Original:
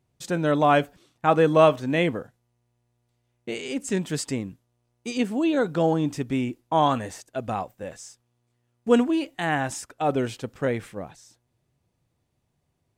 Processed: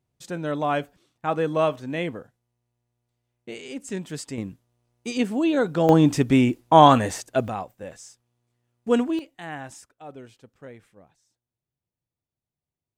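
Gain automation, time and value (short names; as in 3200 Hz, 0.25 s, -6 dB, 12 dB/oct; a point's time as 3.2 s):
-5.5 dB
from 4.38 s +1 dB
from 5.89 s +8 dB
from 7.48 s -2 dB
from 9.19 s -10.5 dB
from 9.89 s -17.5 dB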